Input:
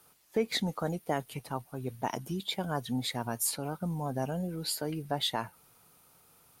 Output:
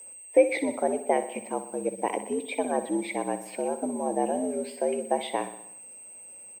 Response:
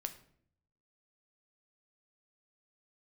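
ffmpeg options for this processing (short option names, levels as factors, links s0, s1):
-filter_complex "[0:a]firequalizer=gain_entry='entry(130,0);entry(410,12);entry(760,5);entry(1200,-9);entry(2200,10);entry(3900,-14);entry(5500,-17);entry(8900,-24)':delay=0.05:min_phase=1,aeval=exprs='val(0)+0.00891*sin(2*PI*8200*n/s)':c=same,afreqshift=78,aeval=exprs='sgn(val(0))*max(abs(val(0))-0.0015,0)':c=same,asplit=2[s0][s1];[s1]aecho=0:1:62|124|186|248|310|372:0.251|0.143|0.0816|0.0465|0.0265|0.0151[s2];[s0][s2]amix=inputs=2:normalize=0"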